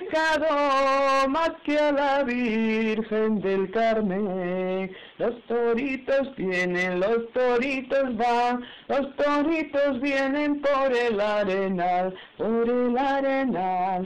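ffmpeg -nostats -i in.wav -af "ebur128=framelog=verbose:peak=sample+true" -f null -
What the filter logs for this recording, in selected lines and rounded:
Integrated loudness:
  I:         -24.4 LUFS
  Threshold: -34.4 LUFS
Loudness range:
  LRA:         2.8 LU
  Threshold: -44.7 LUFS
  LRA low:   -26.1 LUFS
  LRA high:  -23.2 LUFS
Sample peak:
  Peak:      -19.0 dBFS
True peak:
  Peak:      -19.0 dBFS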